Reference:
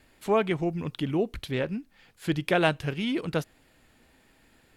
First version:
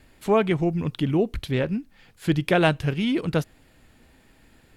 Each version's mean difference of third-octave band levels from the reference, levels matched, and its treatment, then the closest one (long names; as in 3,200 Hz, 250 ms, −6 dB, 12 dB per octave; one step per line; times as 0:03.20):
1.5 dB: low-shelf EQ 220 Hz +6.5 dB
level +2.5 dB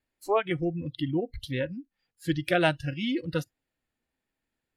7.0 dB: noise reduction from a noise print of the clip's start 24 dB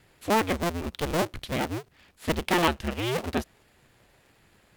10.0 dB: sub-harmonics by changed cycles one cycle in 2, inverted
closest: first